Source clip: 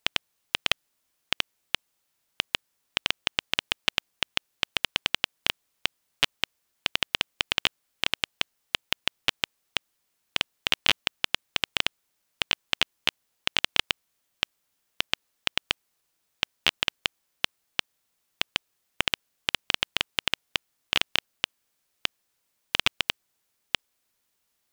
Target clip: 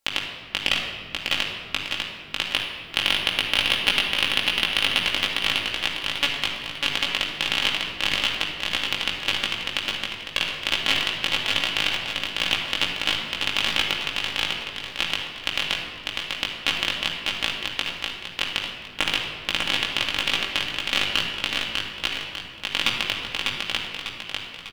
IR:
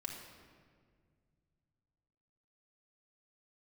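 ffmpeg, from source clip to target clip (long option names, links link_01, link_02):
-filter_complex "[0:a]asettb=1/sr,asplit=3[link_01][link_02][link_03];[link_01]atrim=end=2.514[link_04];[link_02]atrim=start=2.51:end=5.01,asetpts=PTS-STARTPTS,afade=type=in:duration=0.004:curve=qsin,afade=type=out:start_time=2.496:duration=0.004:curve=qsin,acontrast=21[link_05];[link_03]atrim=start=5.006[link_06];[link_04][link_05]acrossfade=duration=0.004:curve1=hsin:curve2=qsin[link_07];[link_07][link_06]acrossfade=duration=0.004:curve1=qsin:curve2=hsin,aecho=1:1:598|1196|1794|2392|2990|3588:0.668|0.307|0.141|0.0651|0.0299|0.0138[link_08];[1:a]atrim=start_sample=2205[link_09];[link_08][link_09]afir=irnorm=-1:irlink=0,flanger=delay=17.5:depth=2.3:speed=2.4,volume=7.5dB"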